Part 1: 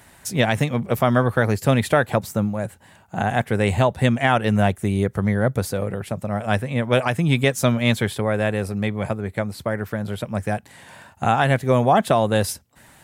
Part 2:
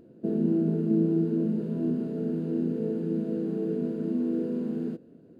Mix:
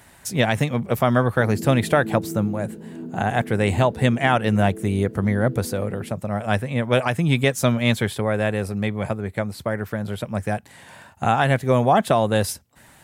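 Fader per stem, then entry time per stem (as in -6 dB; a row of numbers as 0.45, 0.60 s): -0.5, -7.0 dB; 0.00, 1.15 s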